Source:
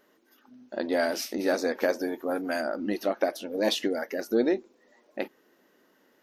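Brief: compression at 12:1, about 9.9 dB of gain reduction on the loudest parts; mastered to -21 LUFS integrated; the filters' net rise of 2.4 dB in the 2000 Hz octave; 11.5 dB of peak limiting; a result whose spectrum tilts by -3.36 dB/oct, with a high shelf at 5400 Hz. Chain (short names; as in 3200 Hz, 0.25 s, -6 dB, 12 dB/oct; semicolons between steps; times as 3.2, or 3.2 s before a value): bell 2000 Hz +3.5 dB; high shelf 5400 Hz -3.5 dB; compressor 12:1, threshold -29 dBFS; gain +18 dB; limiter -10.5 dBFS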